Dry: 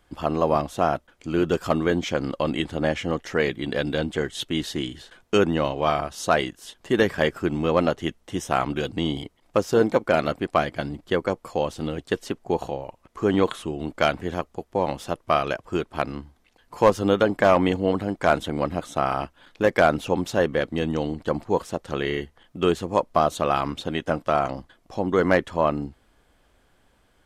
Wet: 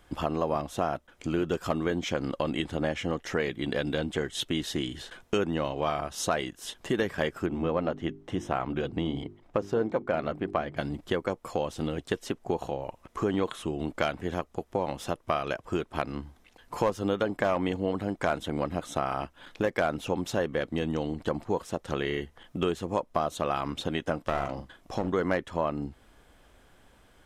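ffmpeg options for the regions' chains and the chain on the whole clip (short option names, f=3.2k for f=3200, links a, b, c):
-filter_complex "[0:a]asettb=1/sr,asplit=3[a][b][c];[a]atrim=end=7.464[d];[b]atrim=start=7.46:end=10.77,asetpts=PTS-STARTPTS,afade=t=in:d=0.004:c=qsin,afade=t=out:st=3.306:d=0.004:c=qsin,lowpass=f=1.7k:p=1,bandreject=f=50:t=h:w=6,bandreject=f=100:t=h:w=6,bandreject=f=150:t=h:w=6,bandreject=f=200:t=h:w=6,bandreject=f=250:t=h:w=6,bandreject=f=300:t=h:w=6,bandreject=f=350:t=h:w=6,bandreject=f=400:t=h:w=6[e];[c]atrim=start=10.766[f];[d][e]acrossfade=d=0.004:c1=hsin:c2=qsin[g];[g][f]acrossfade=d=0.004:c1=qsin:c2=hsin,asettb=1/sr,asplit=3[h][i][j];[h]atrim=end=24.224[k];[i]atrim=start=24.22:end=25.12,asetpts=PTS-STARTPTS,afade=t=in:d=0.004:c=qsin,afade=t=out:st=0.896:d=0.004:c=qsin,aeval=exprs='clip(val(0),-1,0.0501)':c=same,asplit=2[l][m];[m]adelay=43,volume=-10.5dB[n];[l][n]amix=inputs=2:normalize=0,atrim=end_sample=39690[o];[j]atrim=start=25.116[p];[k][o]acrossfade=d=0.004:c1=hsin:c2=qsin[q];[q][p]acrossfade=d=0.004:c1=qsin:c2=hsin,acompressor=threshold=-33dB:ratio=2.5,bandreject=f=4.5k:w=18,volume=3.5dB"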